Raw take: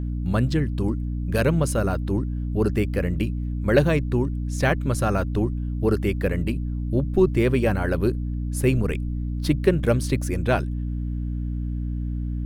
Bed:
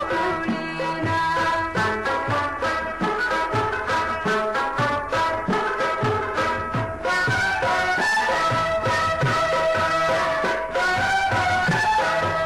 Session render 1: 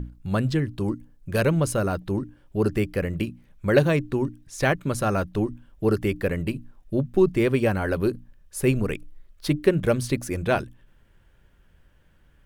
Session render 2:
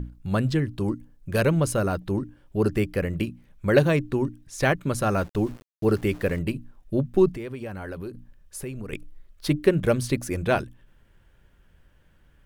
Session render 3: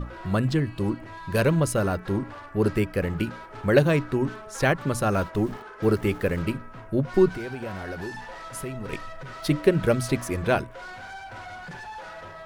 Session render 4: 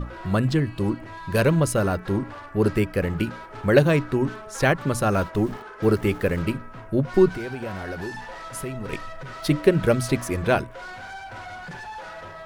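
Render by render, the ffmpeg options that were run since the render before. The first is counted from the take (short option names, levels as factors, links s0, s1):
-af "bandreject=f=60:t=h:w=6,bandreject=f=120:t=h:w=6,bandreject=f=180:t=h:w=6,bandreject=f=240:t=h:w=6,bandreject=f=300:t=h:w=6"
-filter_complex "[0:a]asettb=1/sr,asplit=3[s0][s1][s2];[s0]atrim=end=5.104[s3];[s1]atrim=start=5.1:end=6.39,asetpts=PTS-STARTPTS,afade=t=in:d=0.004:c=qsin,afade=t=out:st=1.286:d=0.004:c=qsin,aeval=exprs='val(0)*gte(abs(val(0)),0.00794)':c=same[s4];[s2]atrim=start=6.386[s5];[s3][s4]acrossfade=d=0.004:c1=hsin:c2=qsin[s6];[s6][s5]acrossfade=d=0.004:c1=qsin:c2=hsin,asettb=1/sr,asplit=3[s7][s8][s9];[s7]atrim=end=7.324[s10];[s8]atrim=start=7.32:end=8.93,asetpts=PTS-STARTPTS,afade=t=in:d=0.004:c=qsin,afade=t=out:st=1.606:d=0.004:c=qsin,acompressor=threshold=0.0224:ratio=4:attack=3.2:release=140:knee=1:detection=peak[s11];[s9]atrim=start=8.926[s12];[s10][s11]acrossfade=d=0.004:c1=hsin:c2=qsin[s13];[s13][s12]acrossfade=d=0.004:c1=qsin:c2=hsin"
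-filter_complex "[1:a]volume=0.112[s0];[0:a][s0]amix=inputs=2:normalize=0"
-af "volume=1.26"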